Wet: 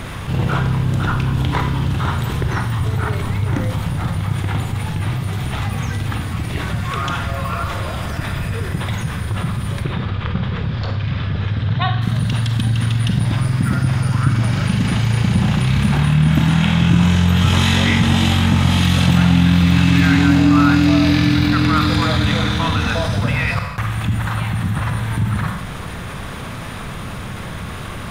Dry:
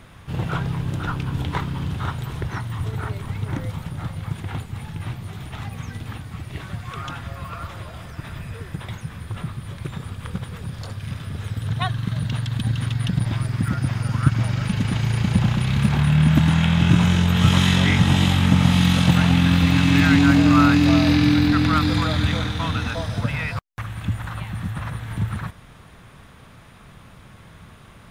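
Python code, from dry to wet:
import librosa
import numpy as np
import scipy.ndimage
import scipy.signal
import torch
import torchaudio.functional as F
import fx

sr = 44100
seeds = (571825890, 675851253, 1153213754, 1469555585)

y = fx.lowpass(x, sr, hz=4300.0, slope=24, at=(9.82, 12.02))
y = fx.rev_schroeder(y, sr, rt60_s=0.56, comb_ms=31, drr_db=6.0)
y = fx.env_flatten(y, sr, amount_pct=50)
y = y * librosa.db_to_amplitude(-1.0)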